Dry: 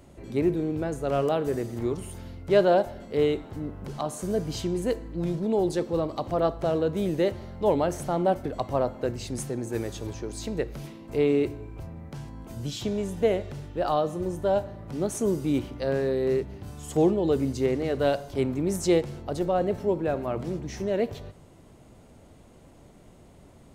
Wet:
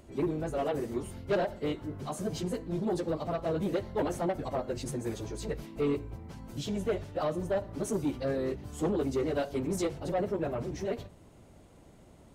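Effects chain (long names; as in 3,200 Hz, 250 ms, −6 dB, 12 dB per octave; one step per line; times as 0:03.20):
time stretch by phase vocoder 0.52×
soft clipping −23 dBFS, distortion −13 dB
every ending faded ahead of time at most 260 dB per second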